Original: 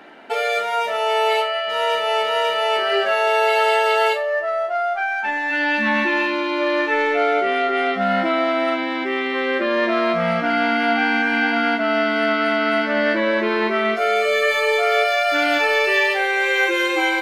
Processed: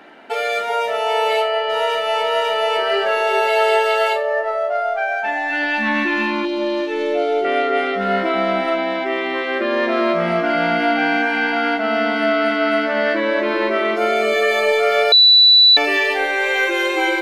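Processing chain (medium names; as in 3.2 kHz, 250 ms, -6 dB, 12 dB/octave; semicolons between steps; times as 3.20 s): 6.45–7.45 s: high-order bell 1.4 kHz -11 dB; bucket-brigade echo 384 ms, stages 2048, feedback 33%, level -3 dB; 15.12–15.77 s: bleep 3.96 kHz -6.5 dBFS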